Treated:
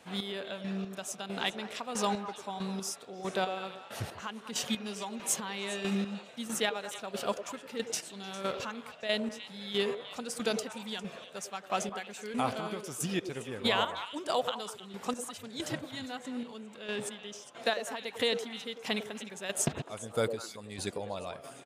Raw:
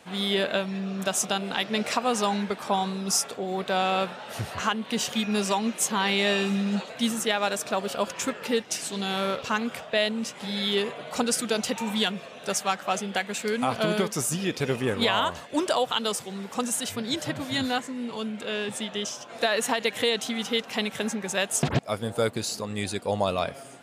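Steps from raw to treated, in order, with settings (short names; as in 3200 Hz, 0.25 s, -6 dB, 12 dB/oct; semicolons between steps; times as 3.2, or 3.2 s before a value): chopper 1.4 Hz, depth 65%, duty 30%; tempo 1.1×; delay with a stepping band-pass 0.101 s, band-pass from 420 Hz, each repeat 1.4 oct, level -5.5 dB; gain -4.5 dB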